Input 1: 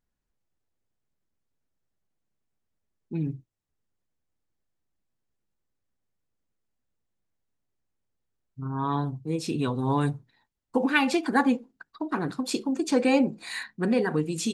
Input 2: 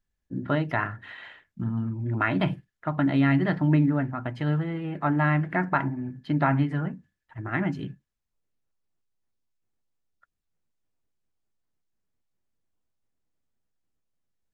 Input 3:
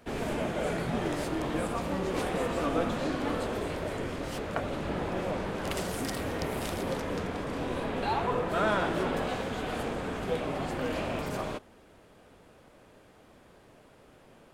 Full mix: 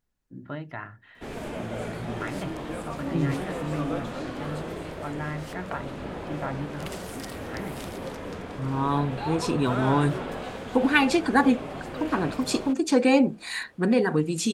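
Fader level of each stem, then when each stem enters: +2.5, -10.5, -3.0 dB; 0.00, 0.00, 1.15 s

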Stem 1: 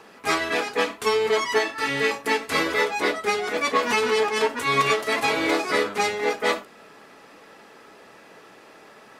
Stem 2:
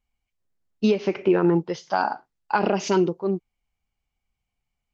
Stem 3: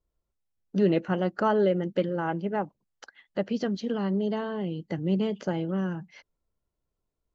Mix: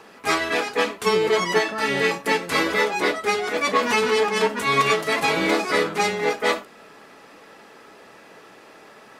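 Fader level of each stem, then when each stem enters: +1.5, -18.5, -7.5 dB; 0.00, 0.00, 0.30 s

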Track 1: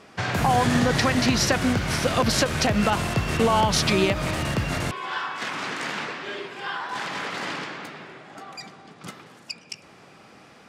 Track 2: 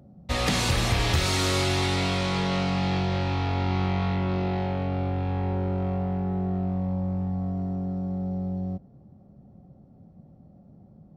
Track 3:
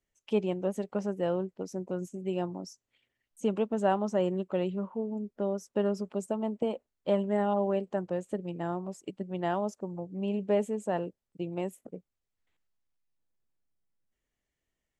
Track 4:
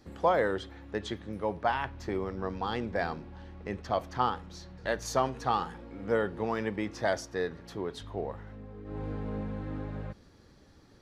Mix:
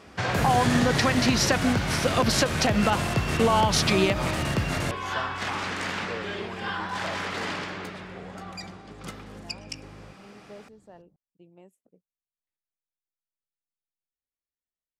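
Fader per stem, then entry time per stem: -1.0, -15.5, -19.0, -9.0 dB; 0.00, 0.00, 0.00, 0.00 s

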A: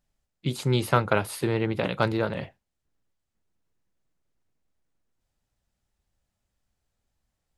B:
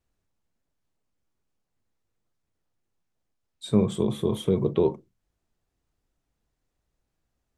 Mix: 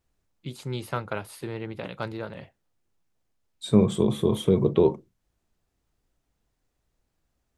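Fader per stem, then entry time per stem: -8.5, +2.5 dB; 0.00, 0.00 s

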